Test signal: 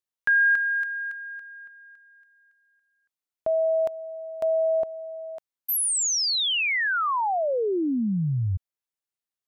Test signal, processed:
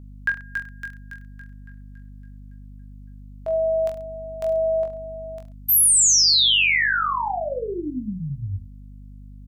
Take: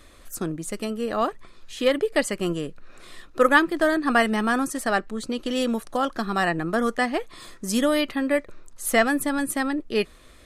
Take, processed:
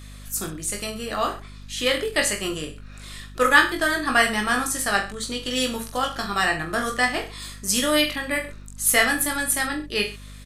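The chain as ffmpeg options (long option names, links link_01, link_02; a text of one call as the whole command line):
ffmpeg -i in.wav -af "tiltshelf=frequency=1300:gain=-7,aecho=1:1:20|43|69.45|99.87|134.8:0.631|0.398|0.251|0.158|0.1,aeval=exprs='val(0)+0.01*(sin(2*PI*50*n/s)+sin(2*PI*2*50*n/s)/2+sin(2*PI*3*50*n/s)/3+sin(2*PI*4*50*n/s)/4+sin(2*PI*5*50*n/s)/5)':channel_layout=same" out.wav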